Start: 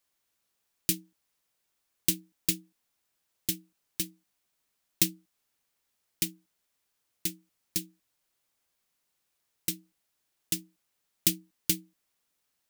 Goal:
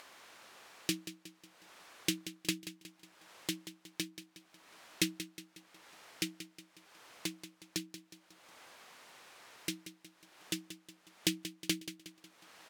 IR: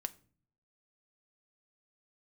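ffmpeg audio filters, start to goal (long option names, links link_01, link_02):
-filter_complex "[0:a]acompressor=mode=upward:threshold=-31dB:ratio=2.5,bandpass=frequency=980:width_type=q:width=0.51:csg=0,asplit=2[link_01][link_02];[link_02]aecho=0:1:182|364|546|728|910:0.251|0.116|0.0532|0.0244|0.0112[link_03];[link_01][link_03]amix=inputs=2:normalize=0,volume=4.5dB"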